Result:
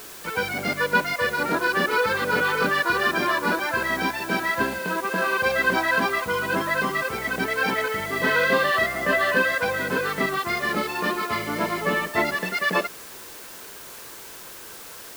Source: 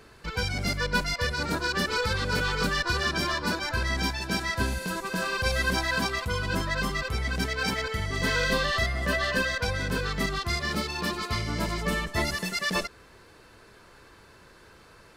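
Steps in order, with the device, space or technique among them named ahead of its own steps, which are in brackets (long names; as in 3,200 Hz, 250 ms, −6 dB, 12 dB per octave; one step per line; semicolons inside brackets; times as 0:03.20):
wax cylinder (band-pass filter 270–2,400 Hz; tape wow and flutter 18 cents; white noise bed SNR 17 dB)
level +7.5 dB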